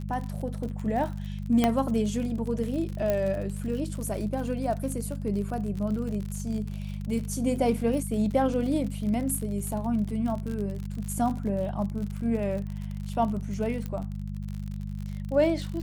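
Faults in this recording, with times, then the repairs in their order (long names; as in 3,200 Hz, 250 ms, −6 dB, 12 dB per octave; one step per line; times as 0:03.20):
surface crackle 53 per second −33 dBFS
mains hum 50 Hz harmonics 4 −34 dBFS
0:01.64: click −9 dBFS
0:03.10: click −14 dBFS
0:13.86: click −21 dBFS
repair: click removal
hum removal 50 Hz, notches 4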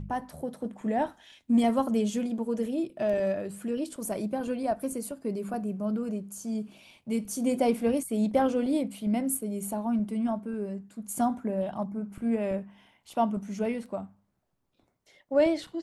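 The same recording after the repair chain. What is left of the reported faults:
0:01.64: click
0:03.10: click
0:13.86: click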